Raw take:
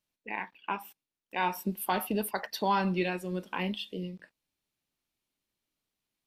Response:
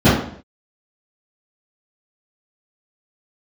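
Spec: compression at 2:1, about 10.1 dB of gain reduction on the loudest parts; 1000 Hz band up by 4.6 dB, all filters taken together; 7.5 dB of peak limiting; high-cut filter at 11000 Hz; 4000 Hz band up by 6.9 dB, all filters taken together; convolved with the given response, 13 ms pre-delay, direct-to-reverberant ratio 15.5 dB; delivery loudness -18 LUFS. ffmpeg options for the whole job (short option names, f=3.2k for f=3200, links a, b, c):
-filter_complex "[0:a]lowpass=11k,equalizer=f=1k:t=o:g=5,equalizer=f=4k:t=o:g=8.5,acompressor=threshold=-37dB:ratio=2,alimiter=level_in=2.5dB:limit=-24dB:level=0:latency=1,volume=-2.5dB,asplit=2[a][b];[1:a]atrim=start_sample=2205,adelay=13[c];[b][c]afir=irnorm=-1:irlink=0,volume=-41.5dB[d];[a][d]amix=inputs=2:normalize=0,volume=21dB"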